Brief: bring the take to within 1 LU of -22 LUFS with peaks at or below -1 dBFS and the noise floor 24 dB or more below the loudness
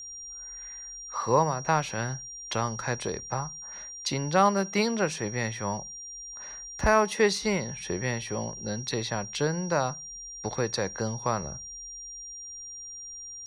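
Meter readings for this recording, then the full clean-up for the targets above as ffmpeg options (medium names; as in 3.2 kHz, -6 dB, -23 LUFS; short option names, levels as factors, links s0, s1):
steady tone 5.7 kHz; tone level -39 dBFS; loudness -29.5 LUFS; peak level -9.0 dBFS; loudness target -22.0 LUFS
-> -af "bandreject=f=5700:w=30"
-af "volume=2.37"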